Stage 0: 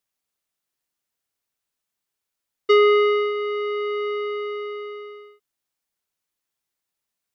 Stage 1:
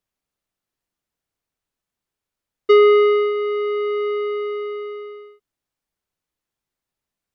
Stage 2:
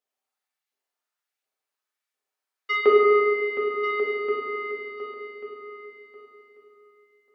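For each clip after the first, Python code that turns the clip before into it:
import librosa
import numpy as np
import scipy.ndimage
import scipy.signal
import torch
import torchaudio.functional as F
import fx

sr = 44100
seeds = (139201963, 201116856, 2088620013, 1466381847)

y1 = fx.tilt_eq(x, sr, slope=-2.0)
y1 = y1 * 10.0 ** (1.5 / 20.0)
y2 = fx.filter_lfo_highpass(y1, sr, shape='saw_up', hz=1.4, low_hz=440.0, high_hz=2700.0, q=1.4)
y2 = fx.echo_feedback(y2, sr, ms=1140, feedback_pct=16, wet_db=-11.0)
y2 = fx.rev_fdn(y2, sr, rt60_s=1.9, lf_ratio=1.2, hf_ratio=0.55, size_ms=23.0, drr_db=-4.5)
y2 = y2 * 10.0 ** (-7.0 / 20.0)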